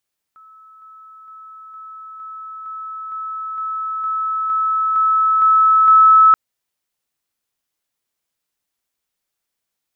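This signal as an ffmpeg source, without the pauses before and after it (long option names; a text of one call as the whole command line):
ffmpeg -f lavfi -i "aevalsrc='pow(10,(-42+3*floor(t/0.46))/20)*sin(2*PI*1300*t)':duration=5.98:sample_rate=44100" out.wav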